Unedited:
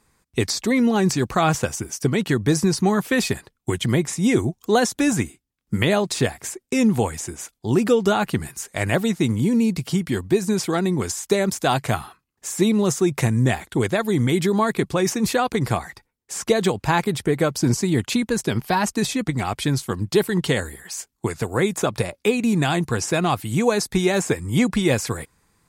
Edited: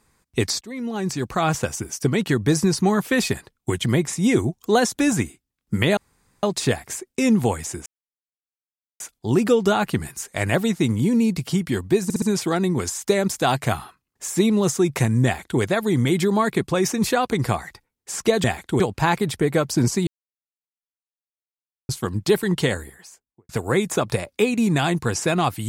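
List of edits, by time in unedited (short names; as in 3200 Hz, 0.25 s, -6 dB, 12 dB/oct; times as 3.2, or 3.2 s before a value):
0.61–2.16 fade in equal-power, from -21 dB
5.97 insert room tone 0.46 s
7.4 insert silence 1.14 s
10.44 stutter 0.06 s, 4 plays
13.47–13.83 copy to 16.66
17.93–19.75 mute
20.48–21.35 studio fade out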